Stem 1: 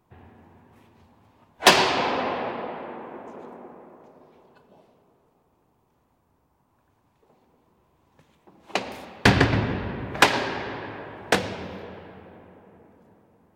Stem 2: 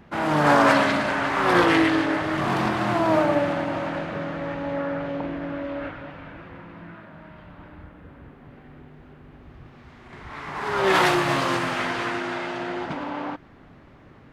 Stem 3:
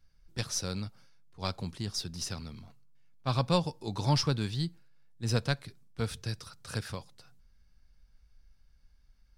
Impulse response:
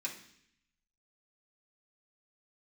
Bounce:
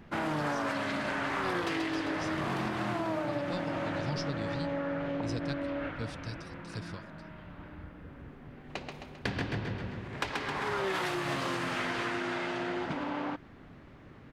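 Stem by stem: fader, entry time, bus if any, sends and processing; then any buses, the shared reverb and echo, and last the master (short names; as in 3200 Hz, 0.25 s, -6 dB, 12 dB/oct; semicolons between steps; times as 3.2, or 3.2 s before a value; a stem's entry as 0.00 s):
-12.0 dB, 0.00 s, no send, echo send -5 dB, high shelf 7600 Hz -10 dB
-2.0 dB, 0.00 s, no send, no echo send, dry
-5.5 dB, 0.00 s, no send, no echo send, LPF 6600 Hz 12 dB/oct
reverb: off
echo: feedback echo 0.132 s, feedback 53%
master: bell 830 Hz -3 dB 1.4 oct; compressor 10:1, threshold -29 dBFS, peak gain reduction 13 dB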